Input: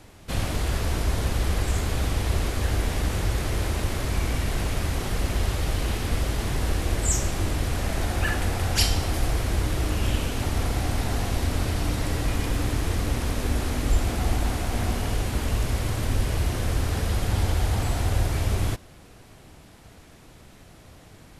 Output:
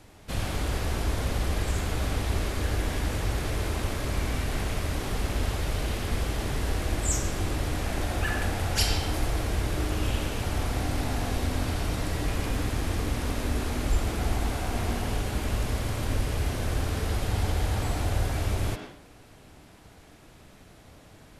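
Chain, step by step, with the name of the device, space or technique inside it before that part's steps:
filtered reverb send (on a send: high-pass filter 200 Hz 24 dB per octave + low-pass filter 3,900 Hz + convolution reverb RT60 0.55 s, pre-delay 88 ms, DRR 3 dB)
on the sum: level −3.5 dB

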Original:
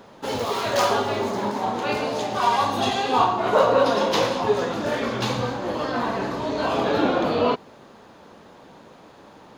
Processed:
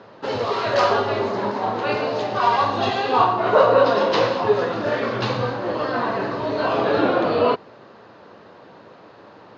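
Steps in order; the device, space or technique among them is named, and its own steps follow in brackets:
bass and treble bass −6 dB, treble +5 dB
guitar cabinet (loudspeaker in its box 81–4,000 Hz, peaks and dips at 110 Hz +8 dB, 250 Hz −3 dB, 840 Hz −4 dB, 2,300 Hz −4 dB, 3,400 Hz −8 dB)
level +4 dB

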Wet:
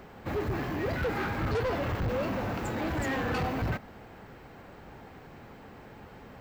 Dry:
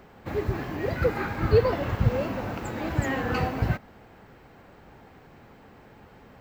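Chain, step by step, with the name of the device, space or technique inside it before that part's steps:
saturation between pre-emphasis and de-emphasis (high-shelf EQ 5,200 Hz +9.5 dB; soft clipping −29 dBFS, distortion −5 dB; high-shelf EQ 5,200 Hz −9.5 dB)
level +2.5 dB

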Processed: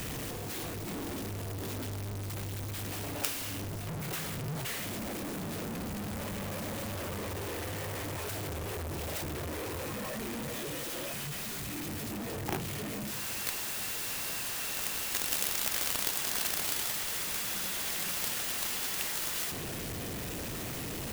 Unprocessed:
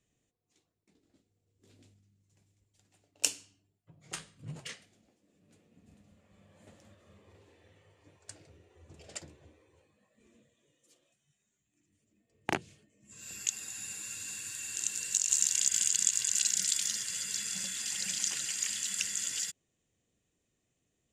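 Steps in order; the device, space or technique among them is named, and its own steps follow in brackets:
0:08.30–0:09.21: flutter between parallel walls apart 6.7 metres, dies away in 0.38 s
early CD player with a faulty converter (converter with a step at zero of −24.5 dBFS; converter with an unsteady clock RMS 0.053 ms)
level −6.5 dB

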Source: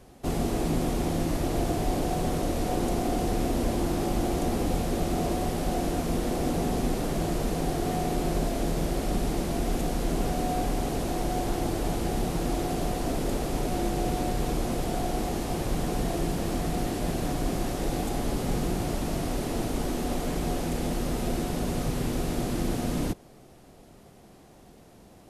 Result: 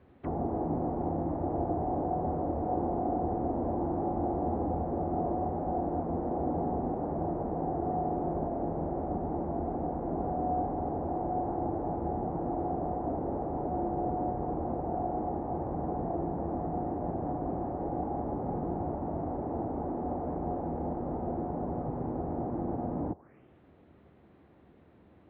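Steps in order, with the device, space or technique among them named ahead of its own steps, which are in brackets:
envelope filter bass rig (envelope-controlled low-pass 790–4,500 Hz down, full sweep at −27 dBFS; loudspeaker in its box 71–2,100 Hz, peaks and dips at 78 Hz +10 dB, 310 Hz +4 dB, 720 Hz −4 dB)
level −7 dB

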